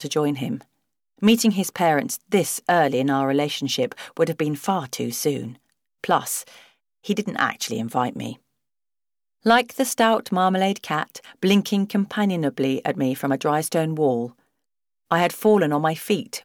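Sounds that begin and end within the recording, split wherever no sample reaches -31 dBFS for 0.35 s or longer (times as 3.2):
1.22–5.52
6.04–6.42
7.06–8.33
9.46–14.27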